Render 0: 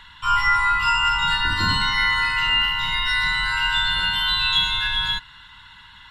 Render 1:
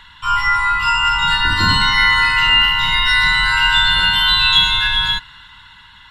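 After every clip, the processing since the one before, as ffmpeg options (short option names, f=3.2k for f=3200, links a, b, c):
-af "dynaudnorm=f=360:g=7:m=6dB,volume=2.5dB"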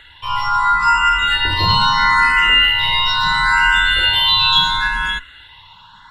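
-filter_complex "[0:a]equalizer=f=590:t=o:w=2.2:g=8,aeval=exprs='1.12*(cos(1*acos(clip(val(0)/1.12,-1,1)))-cos(1*PI/2))+0.00891*(cos(5*acos(clip(val(0)/1.12,-1,1)))-cos(5*PI/2))':c=same,asplit=2[a][b];[b]afreqshift=0.75[c];[a][c]amix=inputs=2:normalize=1"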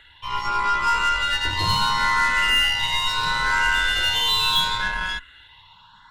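-af "aeval=exprs='0.794*(cos(1*acos(clip(val(0)/0.794,-1,1)))-cos(1*PI/2))+0.0562*(cos(8*acos(clip(val(0)/0.794,-1,1)))-cos(8*PI/2))':c=same,volume=-7dB"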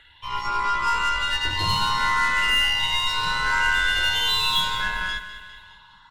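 -filter_complex "[0:a]asplit=2[a][b];[b]aecho=0:1:202|404|606|808|1010:0.224|0.119|0.0629|0.0333|0.0177[c];[a][c]amix=inputs=2:normalize=0,volume=-2dB" -ar 48000 -c:a libvorbis -b:a 128k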